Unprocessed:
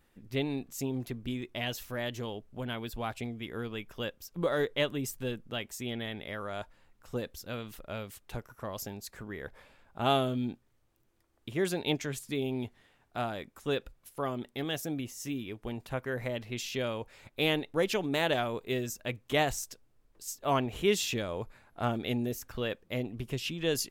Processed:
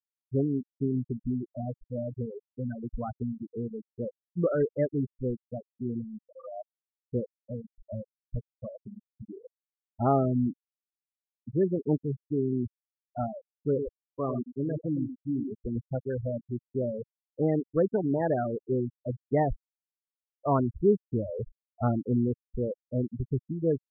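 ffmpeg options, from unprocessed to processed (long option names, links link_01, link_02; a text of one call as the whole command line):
ffmpeg -i in.wav -filter_complex "[0:a]asettb=1/sr,asplit=3[link_01][link_02][link_03];[link_01]atrim=end=13.404[link_04];[link_02]atrim=start=13.4:end=15.84,asetpts=PTS-STARTPTS,afade=type=in:duration=0.004:curve=qsin,afade=type=out:start_time=2.436:duration=0.004:curve=qsin,aecho=1:1:102:0.501,atrim=end_sample=107604[link_05];[link_03]atrim=start=15.836[link_06];[link_04][link_05]acrossfade=duration=0.004:curve1=hsin:curve2=qsin[link_07];[link_07][link_06]acrossfade=duration=0.004:curve1=qsin:curve2=hsin,lowpass=frequency=1700:width=0.5412,lowpass=frequency=1700:width=1.3066,afftfilt=real='re*gte(hypot(re,im),0.0708)':imag='im*gte(hypot(re,im),0.0708)':win_size=1024:overlap=0.75,lowshelf=frequency=450:gain=8" out.wav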